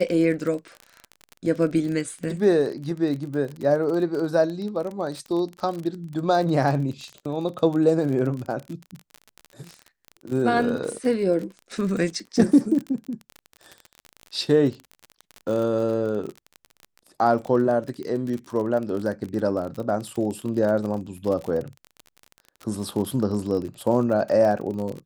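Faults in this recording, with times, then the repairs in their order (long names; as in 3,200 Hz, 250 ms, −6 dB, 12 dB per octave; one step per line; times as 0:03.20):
surface crackle 37 per second −29 dBFS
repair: click removal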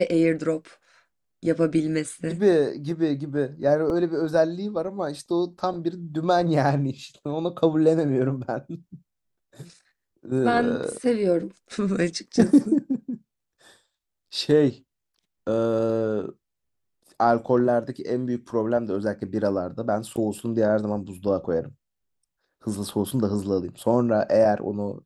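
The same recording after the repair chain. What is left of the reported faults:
none of them is left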